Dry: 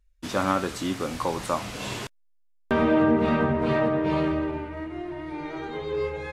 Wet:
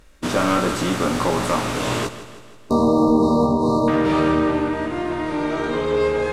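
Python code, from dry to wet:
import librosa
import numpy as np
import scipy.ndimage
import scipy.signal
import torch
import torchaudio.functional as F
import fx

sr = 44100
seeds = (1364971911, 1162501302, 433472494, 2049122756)

y = fx.bin_compress(x, sr, power=0.6)
y = np.clip(y, -10.0 ** (-15.5 / 20.0), 10.0 ** (-15.5 / 20.0))
y = fx.brickwall_bandstop(y, sr, low_hz=1200.0, high_hz=3700.0, at=(2.05, 3.88))
y = fx.doubler(y, sr, ms=17.0, db=-4.0)
y = fx.echo_feedback(y, sr, ms=160, feedback_pct=55, wet_db=-13.5)
y = F.gain(torch.from_numpy(y), 2.5).numpy()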